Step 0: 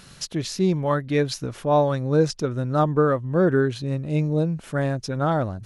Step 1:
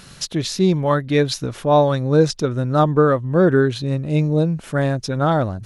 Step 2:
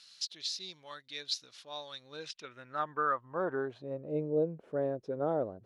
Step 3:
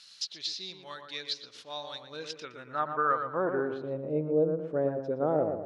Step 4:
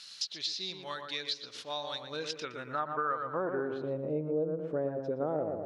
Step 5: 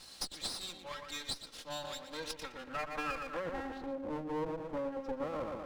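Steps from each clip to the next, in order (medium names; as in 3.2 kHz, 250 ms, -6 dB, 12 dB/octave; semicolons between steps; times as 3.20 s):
dynamic bell 3.7 kHz, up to +5 dB, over -51 dBFS, Q 4.7; trim +4.5 dB
band-pass sweep 4.4 kHz -> 460 Hz, 1.85–4.17 s; trim -6.5 dB
low-pass that closes with the level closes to 2.5 kHz, closed at -29 dBFS; tape echo 116 ms, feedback 47%, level -4.5 dB, low-pass 1.4 kHz; trim +3.5 dB
compression 2.5:1, threshold -38 dBFS, peak gain reduction 11 dB; trim +4.5 dB
comb filter that takes the minimum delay 3.7 ms; trim -2.5 dB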